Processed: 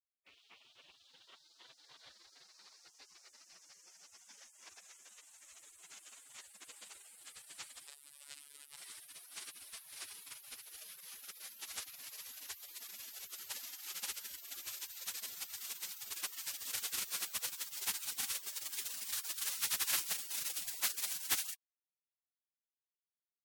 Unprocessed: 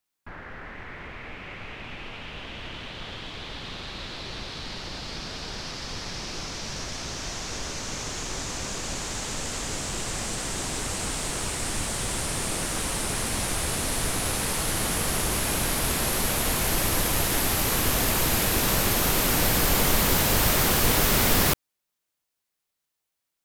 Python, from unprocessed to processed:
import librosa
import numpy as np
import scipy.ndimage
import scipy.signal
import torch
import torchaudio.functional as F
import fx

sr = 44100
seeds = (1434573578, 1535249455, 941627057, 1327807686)

y = fx.dynamic_eq(x, sr, hz=650.0, q=0.72, threshold_db=-39.0, ratio=4.0, max_db=3)
y = fx.spec_gate(y, sr, threshold_db=-25, keep='weak')
y = fx.robotise(y, sr, hz=143.0, at=(7.87, 8.77))
y = y * librosa.db_to_amplitude(-4.5)